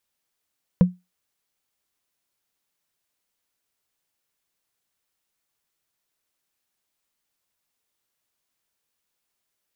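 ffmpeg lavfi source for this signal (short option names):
-f lavfi -i "aevalsrc='0.447*pow(10,-3*t/0.21)*sin(2*PI*180*t)+0.141*pow(10,-3*t/0.062)*sin(2*PI*496.3*t)+0.0447*pow(10,-3*t/0.028)*sin(2*PI*972.7*t)+0.0141*pow(10,-3*t/0.015)*sin(2*PI*1607.9*t)+0.00447*pow(10,-3*t/0.009)*sin(2*PI*2401.2*t)':d=0.45:s=44100"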